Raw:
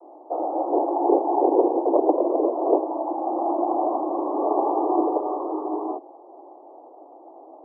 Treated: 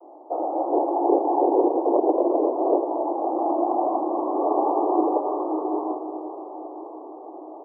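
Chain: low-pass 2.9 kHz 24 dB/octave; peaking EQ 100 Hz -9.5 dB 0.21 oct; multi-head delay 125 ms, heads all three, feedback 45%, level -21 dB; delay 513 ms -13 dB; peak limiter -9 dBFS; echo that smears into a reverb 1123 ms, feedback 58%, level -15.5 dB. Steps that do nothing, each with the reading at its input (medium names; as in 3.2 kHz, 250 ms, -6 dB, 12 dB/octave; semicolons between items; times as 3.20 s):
low-pass 2.9 kHz: input has nothing above 1.2 kHz; peaking EQ 100 Hz: input has nothing below 210 Hz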